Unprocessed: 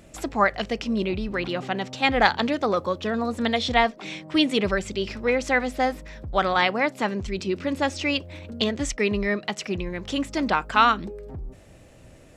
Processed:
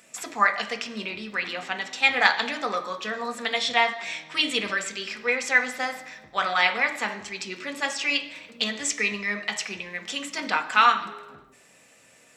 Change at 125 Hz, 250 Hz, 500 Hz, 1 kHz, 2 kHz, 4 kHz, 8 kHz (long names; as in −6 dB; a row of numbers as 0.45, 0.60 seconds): below −10 dB, −11.0 dB, −7.5 dB, −1.5 dB, +3.0 dB, +1.5 dB, +5.5 dB